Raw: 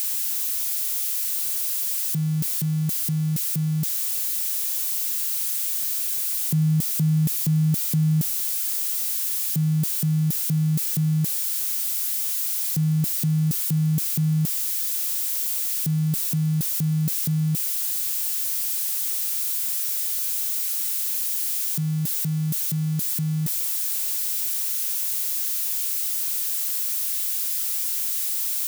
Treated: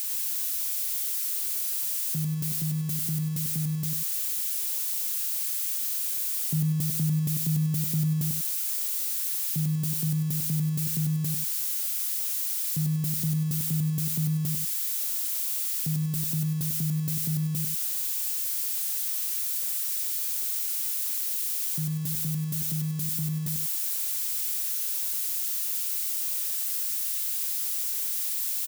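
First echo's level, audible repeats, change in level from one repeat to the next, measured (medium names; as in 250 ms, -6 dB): -3.5 dB, 2, -9.5 dB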